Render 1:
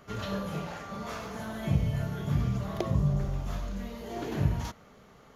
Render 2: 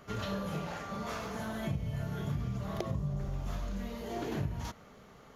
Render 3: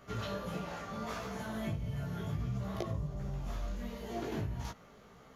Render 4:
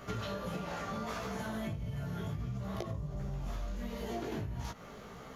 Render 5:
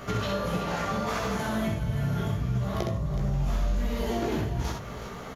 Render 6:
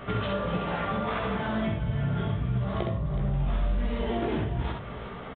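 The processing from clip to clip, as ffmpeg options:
-af "acompressor=threshold=-32dB:ratio=4"
-af "flanger=delay=15.5:depth=3.1:speed=1.5,volume=1dB"
-af "acompressor=threshold=-44dB:ratio=6,volume=8.5dB"
-af "aecho=1:1:65|372:0.596|0.266,volume=8dB"
-af "aresample=8000,aresample=44100"

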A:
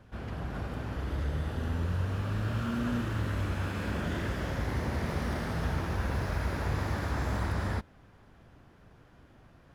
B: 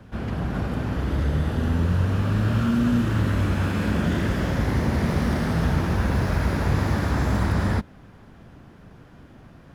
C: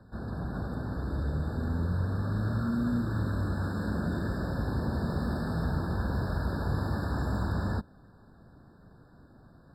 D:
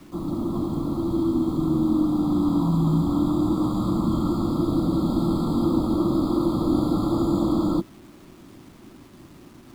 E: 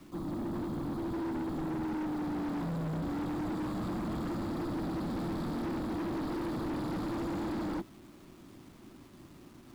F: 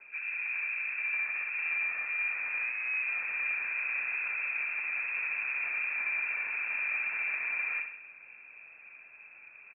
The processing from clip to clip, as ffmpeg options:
-filter_complex "[0:a]equalizer=f=200:t=o:w=1.4:g=5.5,acrossover=split=240|3000[a][b][c];[b]acompressor=threshold=-32dB:ratio=6[d];[a][d][c]amix=inputs=3:normalize=0,volume=7.5dB"
-af "afftfilt=real='re*eq(mod(floor(b*sr/1024/1800),2),0)':imag='im*eq(mod(floor(b*sr/1024/1800),2),0)':win_size=1024:overlap=0.75,volume=-8dB"
-af "acrusher=bits=9:mix=0:aa=0.000001,afreqshift=-400,volume=8dB"
-af "asoftclip=type=hard:threshold=-26.5dB,volume=-6.5dB"
-af "aecho=1:1:63|126|189|252|315|378:0.447|0.237|0.125|0.0665|0.0352|0.0187,lowpass=f=2.3k:t=q:w=0.5098,lowpass=f=2.3k:t=q:w=0.6013,lowpass=f=2.3k:t=q:w=0.9,lowpass=f=2.3k:t=q:w=2.563,afreqshift=-2700"

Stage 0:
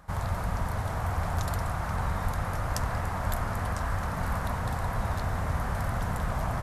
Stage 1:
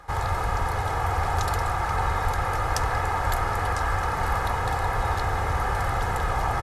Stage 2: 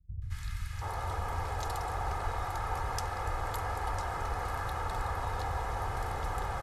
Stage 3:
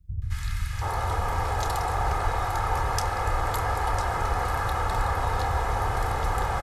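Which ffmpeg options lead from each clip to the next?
-filter_complex "[0:a]highshelf=f=9.6k:g=-10,aecho=1:1:2.4:0.58,acrossover=split=330[a][b];[b]acontrast=86[c];[a][c]amix=inputs=2:normalize=0"
-filter_complex "[0:a]acrossover=split=170|1800[a][b][c];[c]adelay=220[d];[b]adelay=730[e];[a][e][d]amix=inputs=3:normalize=0,volume=-8.5dB"
-filter_complex "[0:a]asplit=2[a][b];[b]adelay=29,volume=-11.5dB[c];[a][c]amix=inputs=2:normalize=0,volume=8dB"

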